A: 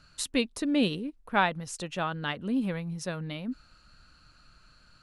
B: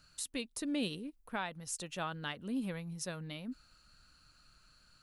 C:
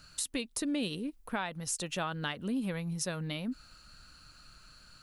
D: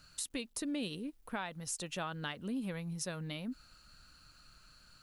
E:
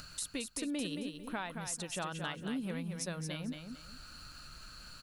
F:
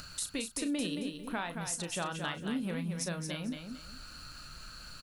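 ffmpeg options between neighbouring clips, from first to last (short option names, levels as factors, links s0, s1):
-af "aemphasis=mode=production:type=50kf,alimiter=limit=0.141:level=0:latency=1:release=293,volume=0.398"
-af "acompressor=threshold=0.00891:ratio=2.5,volume=2.66"
-af "acrusher=bits=11:mix=0:aa=0.000001,volume=0.596"
-af "acompressor=mode=upward:threshold=0.00891:ratio=2.5,aecho=1:1:224|448|672:0.473|0.128|0.0345"
-filter_complex "[0:a]asplit=2[s0][s1];[s1]adelay=35,volume=0.316[s2];[s0][s2]amix=inputs=2:normalize=0,volume=1.33"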